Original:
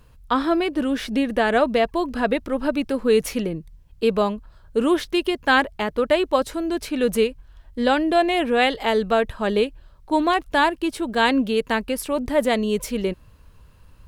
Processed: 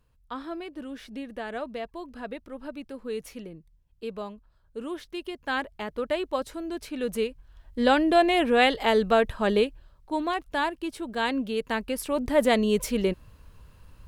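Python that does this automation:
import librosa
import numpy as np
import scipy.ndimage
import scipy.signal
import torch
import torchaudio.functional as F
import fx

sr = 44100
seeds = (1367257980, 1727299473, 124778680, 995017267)

y = fx.gain(x, sr, db=fx.line((4.94, -15.5), (5.93, -9.0), (7.12, -9.0), (7.89, -1.5), (9.51, -1.5), (10.15, -8.5), (11.39, -8.5), (12.5, -1.0)))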